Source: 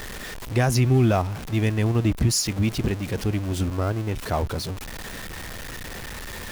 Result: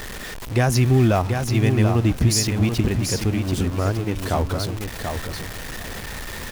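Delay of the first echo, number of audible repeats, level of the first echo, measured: 735 ms, 2, -6.0 dB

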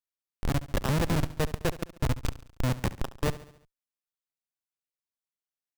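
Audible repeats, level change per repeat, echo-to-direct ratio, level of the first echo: 4, -5.5 dB, -14.5 dB, -16.0 dB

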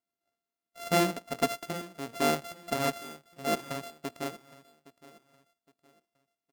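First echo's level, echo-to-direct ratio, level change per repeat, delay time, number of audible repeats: -19.0 dB, -18.5 dB, -10.0 dB, 815 ms, 2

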